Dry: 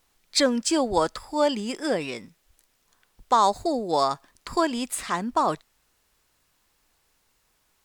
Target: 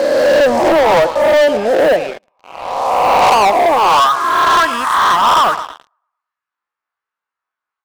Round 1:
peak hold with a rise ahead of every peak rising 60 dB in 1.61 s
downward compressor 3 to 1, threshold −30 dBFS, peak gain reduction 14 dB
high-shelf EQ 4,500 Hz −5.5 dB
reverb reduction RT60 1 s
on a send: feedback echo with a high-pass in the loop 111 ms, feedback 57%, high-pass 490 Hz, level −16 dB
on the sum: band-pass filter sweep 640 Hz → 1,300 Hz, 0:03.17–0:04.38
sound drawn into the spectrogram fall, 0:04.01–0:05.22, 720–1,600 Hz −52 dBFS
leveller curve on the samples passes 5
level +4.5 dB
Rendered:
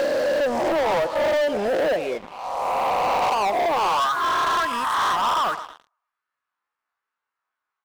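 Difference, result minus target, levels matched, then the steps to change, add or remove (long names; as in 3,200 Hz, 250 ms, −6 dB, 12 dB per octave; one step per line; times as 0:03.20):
downward compressor: peak gain reduction +14 dB
remove: downward compressor 3 to 1, threshold −30 dBFS, peak gain reduction 14 dB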